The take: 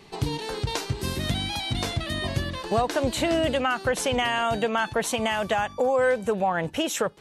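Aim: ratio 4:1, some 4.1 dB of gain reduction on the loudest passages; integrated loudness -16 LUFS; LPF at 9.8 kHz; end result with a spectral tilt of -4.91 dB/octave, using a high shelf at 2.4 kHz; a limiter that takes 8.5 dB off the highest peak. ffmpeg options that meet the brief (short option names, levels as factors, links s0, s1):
-af "lowpass=9800,highshelf=f=2400:g=-8,acompressor=threshold=0.0562:ratio=4,volume=7.08,alimiter=limit=0.447:level=0:latency=1"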